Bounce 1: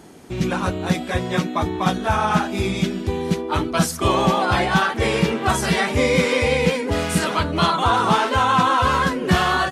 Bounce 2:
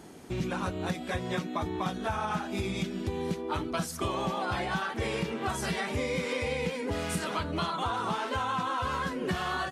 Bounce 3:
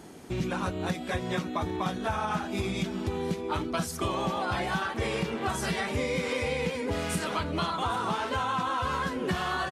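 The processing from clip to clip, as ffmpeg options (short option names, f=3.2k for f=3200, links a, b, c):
-af "acompressor=threshold=-24dB:ratio=6,volume=-4.5dB"
-af "aecho=1:1:799:0.141,volume=1.5dB"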